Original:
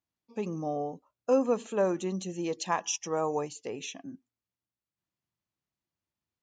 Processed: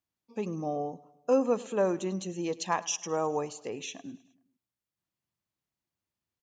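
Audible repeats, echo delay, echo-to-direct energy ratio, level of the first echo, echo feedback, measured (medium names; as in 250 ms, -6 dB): 3, 104 ms, -19.5 dB, -21.0 dB, 57%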